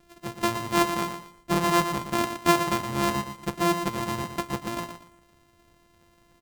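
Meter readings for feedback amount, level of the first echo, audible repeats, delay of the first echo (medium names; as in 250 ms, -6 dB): 27%, -8.5 dB, 3, 118 ms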